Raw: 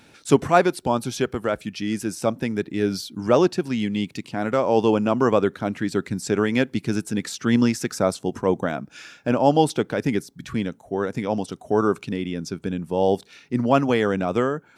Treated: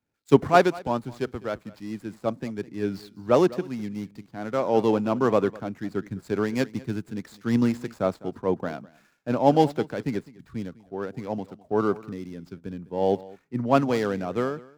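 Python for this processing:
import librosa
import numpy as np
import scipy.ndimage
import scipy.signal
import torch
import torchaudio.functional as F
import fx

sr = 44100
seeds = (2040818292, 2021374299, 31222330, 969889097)

p1 = scipy.signal.medfilt(x, 15)
p2 = p1 + fx.echo_single(p1, sr, ms=206, db=-17.5, dry=0)
p3 = fx.band_widen(p2, sr, depth_pct=70)
y = p3 * librosa.db_to_amplitude(-4.0)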